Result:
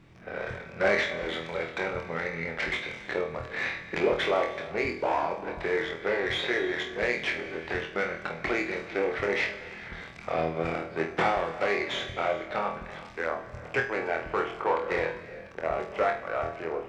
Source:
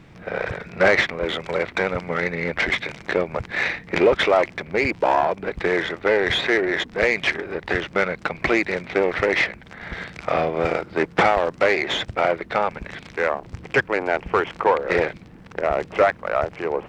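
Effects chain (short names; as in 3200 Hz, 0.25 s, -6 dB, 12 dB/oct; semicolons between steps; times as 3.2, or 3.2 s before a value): resonator 380 Hz, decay 0.89 s, mix 70%; flutter echo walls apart 4.2 m, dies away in 0.33 s; non-linear reverb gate 0.47 s flat, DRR 12 dB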